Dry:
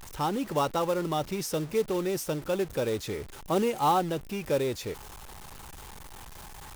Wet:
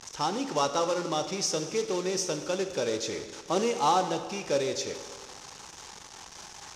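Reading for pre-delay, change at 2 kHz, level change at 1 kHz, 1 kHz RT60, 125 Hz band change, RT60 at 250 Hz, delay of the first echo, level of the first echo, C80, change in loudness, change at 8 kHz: 18 ms, +1.5 dB, +0.5 dB, 1.6 s, -5.5 dB, 1.6 s, none, none, 11.0 dB, 0.0 dB, +7.0 dB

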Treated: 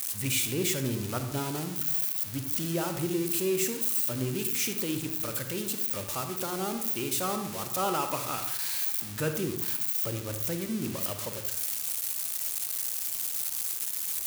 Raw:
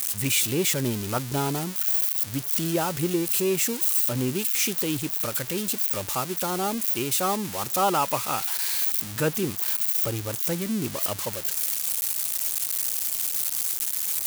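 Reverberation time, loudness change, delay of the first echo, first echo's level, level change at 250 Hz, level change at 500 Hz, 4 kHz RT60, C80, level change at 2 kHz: 0.75 s, -5.0 dB, none, none, -4.0 dB, -4.5 dB, 0.40 s, 10.5 dB, -5.0 dB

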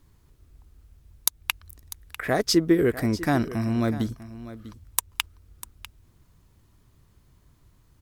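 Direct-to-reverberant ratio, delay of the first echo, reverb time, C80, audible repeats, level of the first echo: none, 0.647 s, none, none, 1, -15.5 dB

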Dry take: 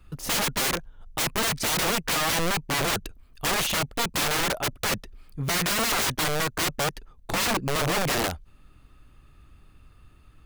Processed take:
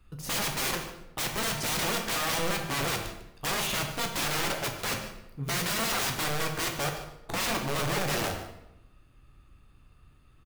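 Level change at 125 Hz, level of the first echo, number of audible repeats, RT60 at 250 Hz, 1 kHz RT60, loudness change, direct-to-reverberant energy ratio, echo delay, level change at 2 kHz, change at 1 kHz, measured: -3.0 dB, -15.0 dB, 1, 1.0 s, 0.85 s, -4.5 dB, 2.5 dB, 0.148 s, -4.0 dB, -4.0 dB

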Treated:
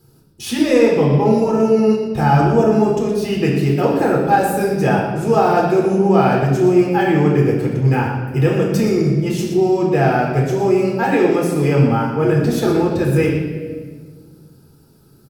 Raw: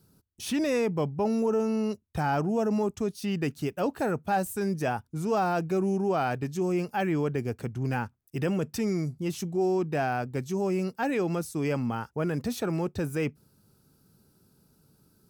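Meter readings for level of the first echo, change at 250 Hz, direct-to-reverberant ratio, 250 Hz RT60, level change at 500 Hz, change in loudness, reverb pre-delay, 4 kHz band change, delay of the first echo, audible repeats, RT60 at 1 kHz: -9.0 dB, +12.5 dB, -3.0 dB, 2.2 s, +14.0 dB, +13.5 dB, 8 ms, +11.0 dB, 0.12 s, 1, 1.3 s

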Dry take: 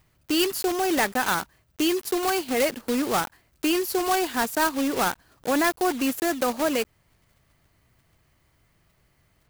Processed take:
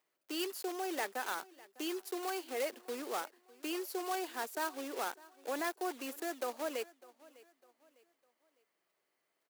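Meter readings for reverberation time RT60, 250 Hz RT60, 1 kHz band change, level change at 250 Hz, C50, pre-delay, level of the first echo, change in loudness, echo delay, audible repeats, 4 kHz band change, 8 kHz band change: none, none, -13.5 dB, -17.0 dB, none, none, -21.5 dB, -14.5 dB, 0.603 s, 2, -14.5 dB, -14.5 dB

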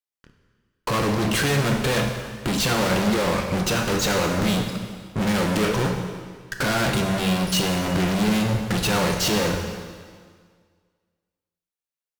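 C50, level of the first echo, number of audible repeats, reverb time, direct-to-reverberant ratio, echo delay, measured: 5.0 dB, none, none, 1.8 s, 3.0 dB, none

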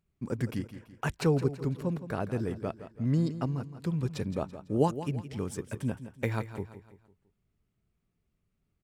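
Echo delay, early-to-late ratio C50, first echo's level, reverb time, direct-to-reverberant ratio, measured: 0.167 s, none, -12.5 dB, none, none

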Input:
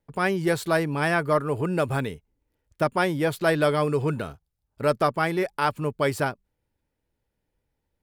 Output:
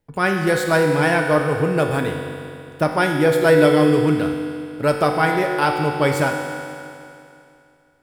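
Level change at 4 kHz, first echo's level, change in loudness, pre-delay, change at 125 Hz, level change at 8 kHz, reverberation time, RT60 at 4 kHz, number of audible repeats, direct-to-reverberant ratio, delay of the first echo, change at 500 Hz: +6.5 dB, none, +6.5 dB, 4 ms, +6.0 dB, +6.5 dB, 2.6 s, 2.6 s, none, 1.5 dB, none, +7.0 dB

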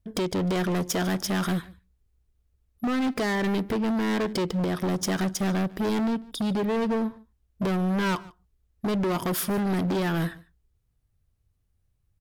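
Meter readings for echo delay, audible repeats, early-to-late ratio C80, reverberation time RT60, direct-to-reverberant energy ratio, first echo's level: 0.147 s, 1, none, none, none, -22.5 dB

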